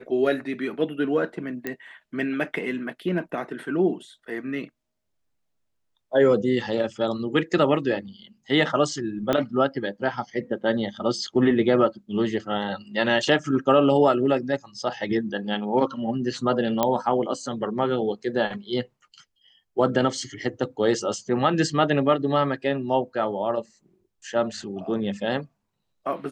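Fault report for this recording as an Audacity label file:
1.670000	1.670000	pop -15 dBFS
9.330000	9.330000	pop -9 dBFS
16.830000	16.830000	pop -7 dBFS

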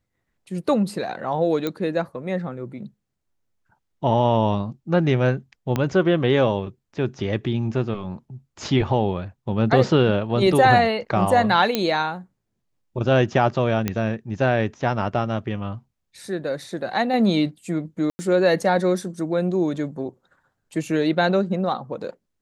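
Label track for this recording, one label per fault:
1.670000	1.670000	pop -12 dBFS
5.760000	5.760000	pop -9 dBFS
11.750000	11.750000	pop -6 dBFS
13.880000	13.880000	pop -9 dBFS
18.100000	18.190000	gap 90 ms

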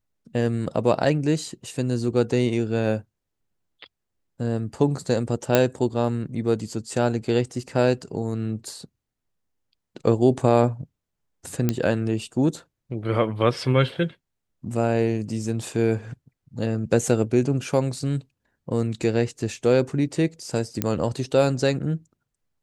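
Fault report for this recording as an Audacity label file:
5.550000	5.550000	pop -3 dBFS
11.690000	11.690000	pop -8 dBFS
20.820000	20.820000	pop -7 dBFS

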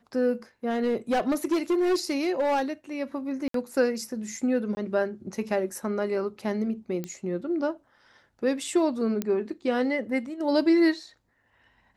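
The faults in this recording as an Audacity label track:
0.690000	2.620000	clipped -20 dBFS
3.480000	3.540000	gap 63 ms
4.750000	4.770000	gap 20 ms
7.040000	7.040000	pop -19 dBFS
9.220000	9.220000	pop -14 dBFS

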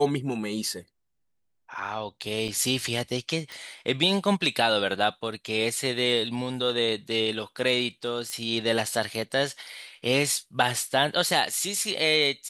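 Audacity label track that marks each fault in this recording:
2.480000	2.490000	gap 5.4 ms
3.520000	3.520000	pop
8.300000	8.300000	pop -19 dBFS

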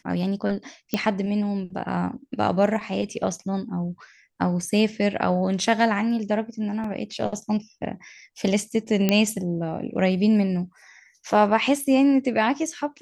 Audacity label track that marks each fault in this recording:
0.940000	0.940000	pop -9 dBFS
6.840000	6.840000	gap 3.7 ms
9.090000	9.090000	pop -6 dBFS

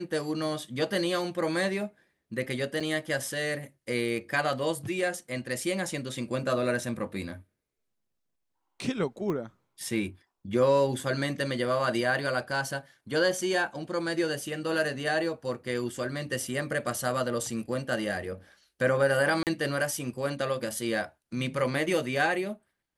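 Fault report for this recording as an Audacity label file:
2.800000	2.810000	gap 5.7 ms
9.300000	9.300000	pop -21 dBFS
19.430000	19.470000	gap 38 ms

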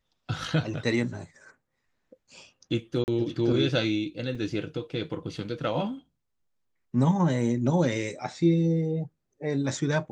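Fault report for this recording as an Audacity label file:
3.040000	3.080000	gap 39 ms
4.350000	4.350000	gap 4.3 ms

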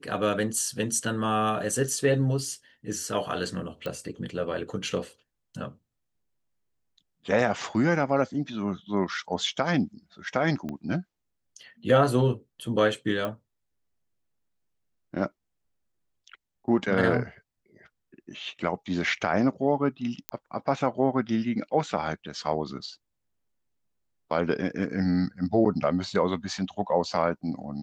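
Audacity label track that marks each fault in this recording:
3.860000	3.860000	pop -20 dBFS
10.690000	10.690000	pop -22 dBFS
13.250000	13.250000	pop -18 dBFS
20.290000	20.290000	pop -13 dBFS

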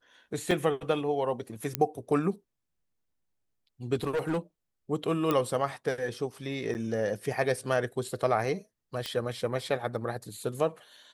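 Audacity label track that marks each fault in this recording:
0.510000	0.510000	gap 3.7 ms
1.750000	1.750000	pop -9 dBFS
4.030000	4.380000	clipped -25 dBFS
5.310000	5.310000	pop -14 dBFS
6.740000	6.750000	gap 9.3 ms
9.060000	9.060000	pop -18 dBFS

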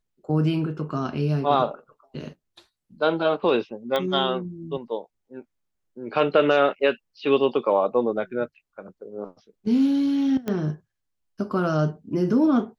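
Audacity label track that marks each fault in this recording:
3.960000	3.960000	pop -12 dBFS
10.480000	10.480000	pop -15 dBFS

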